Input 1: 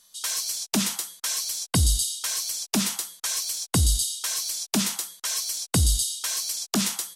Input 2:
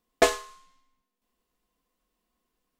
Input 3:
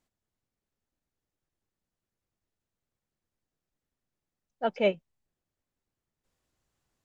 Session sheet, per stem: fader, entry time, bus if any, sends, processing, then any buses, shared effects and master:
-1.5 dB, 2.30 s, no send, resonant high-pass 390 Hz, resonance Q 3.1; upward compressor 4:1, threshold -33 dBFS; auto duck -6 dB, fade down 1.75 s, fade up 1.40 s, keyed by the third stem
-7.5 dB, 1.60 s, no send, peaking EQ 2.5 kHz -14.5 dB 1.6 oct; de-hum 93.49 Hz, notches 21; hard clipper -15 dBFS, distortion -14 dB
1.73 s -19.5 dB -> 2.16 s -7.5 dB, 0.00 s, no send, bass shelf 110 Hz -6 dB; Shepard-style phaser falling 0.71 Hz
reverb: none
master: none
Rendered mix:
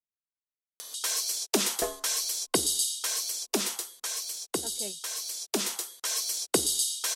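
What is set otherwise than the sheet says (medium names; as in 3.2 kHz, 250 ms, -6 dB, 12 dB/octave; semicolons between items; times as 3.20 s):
stem 1: entry 2.30 s -> 0.80 s; stem 3 -19.5 dB -> -25.5 dB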